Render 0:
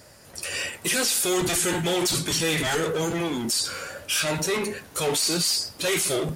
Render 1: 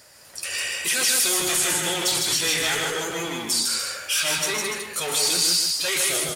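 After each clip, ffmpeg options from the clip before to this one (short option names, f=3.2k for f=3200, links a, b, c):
-filter_complex "[0:a]tiltshelf=f=650:g=-6.5,asplit=2[a][b];[b]aecho=0:1:119.5|154.5|291.5:0.316|0.708|0.355[c];[a][c]amix=inputs=2:normalize=0,volume=-4.5dB"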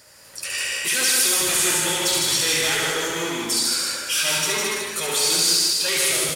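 -af "bandreject=f=710:w=12,aecho=1:1:70|175|332.5|568.8|923.1:0.631|0.398|0.251|0.158|0.1"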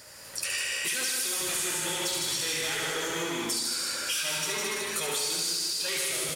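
-af "acompressor=threshold=-30dB:ratio=5,volume=1.5dB"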